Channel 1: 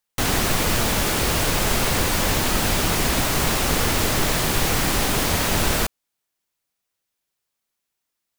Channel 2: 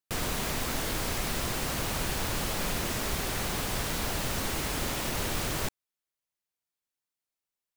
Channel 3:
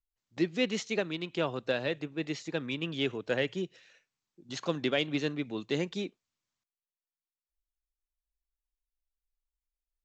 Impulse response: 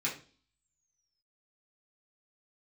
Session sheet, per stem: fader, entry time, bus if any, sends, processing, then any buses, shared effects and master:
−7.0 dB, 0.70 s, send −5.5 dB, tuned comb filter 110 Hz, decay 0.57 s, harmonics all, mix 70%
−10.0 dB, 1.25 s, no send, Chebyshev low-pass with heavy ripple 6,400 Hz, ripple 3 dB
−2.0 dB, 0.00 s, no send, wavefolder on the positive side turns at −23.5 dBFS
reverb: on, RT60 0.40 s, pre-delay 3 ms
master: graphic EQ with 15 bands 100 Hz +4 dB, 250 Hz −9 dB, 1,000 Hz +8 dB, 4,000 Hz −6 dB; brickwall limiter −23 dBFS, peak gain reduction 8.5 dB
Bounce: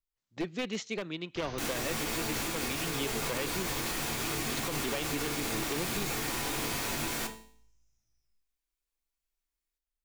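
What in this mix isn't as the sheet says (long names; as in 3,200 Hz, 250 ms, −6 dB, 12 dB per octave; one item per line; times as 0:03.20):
stem 1: entry 0.70 s → 1.40 s
master: missing graphic EQ with 15 bands 100 Hz +4 dB, 250 Hz −9 dB, 1,000 Hz +8 dB, 4,000 Hz −6 dB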